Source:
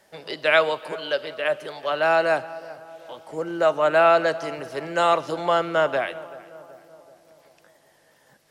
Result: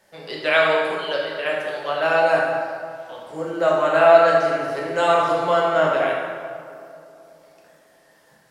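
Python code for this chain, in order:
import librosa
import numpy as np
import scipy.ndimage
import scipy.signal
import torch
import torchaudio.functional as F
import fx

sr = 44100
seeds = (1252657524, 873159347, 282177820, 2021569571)

y = fx.rev_plate(x, sr, seeds[0], rt60_s=1.8, hf_ratio=0.65, predelay_ms=0, drr_db=-3.5)
y = F.gain(torch.from_numpy(y), -2.5).numpy()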